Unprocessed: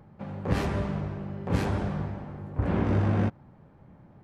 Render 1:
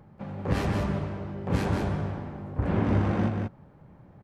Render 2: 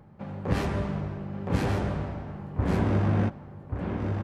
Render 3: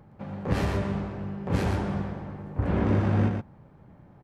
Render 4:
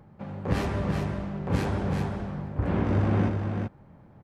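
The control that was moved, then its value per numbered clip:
echo, time: 0.183, 1.134, 0.116, 0.382 s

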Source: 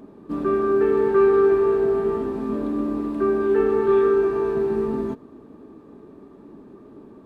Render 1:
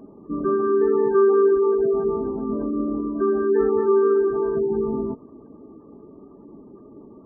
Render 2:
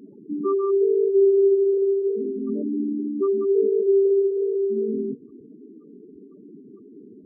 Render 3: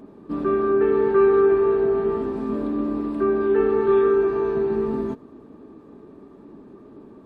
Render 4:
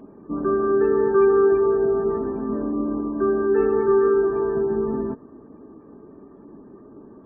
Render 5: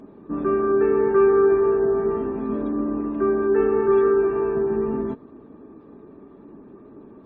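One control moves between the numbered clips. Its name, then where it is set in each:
spectral gate, under each frame's peak: -25, -10, -60, -35, -45 dB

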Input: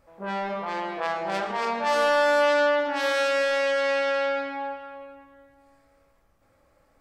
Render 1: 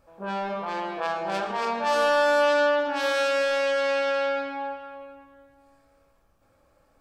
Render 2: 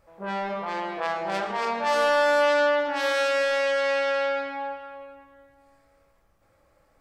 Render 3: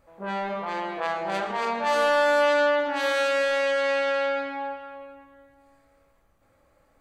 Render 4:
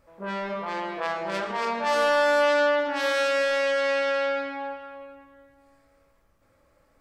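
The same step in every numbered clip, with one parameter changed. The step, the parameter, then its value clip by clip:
notch, frequency: 2000, 260, 5300, 770 Hz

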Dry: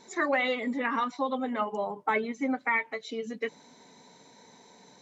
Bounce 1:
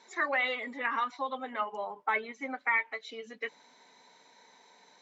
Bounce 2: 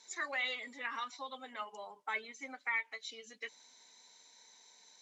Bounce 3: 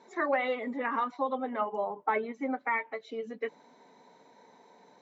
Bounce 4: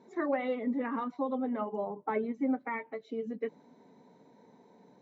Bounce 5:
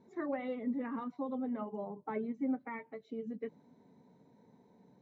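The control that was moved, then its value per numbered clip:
band-pass, frequency: 1900, 6600, 720, 270, 110 Hz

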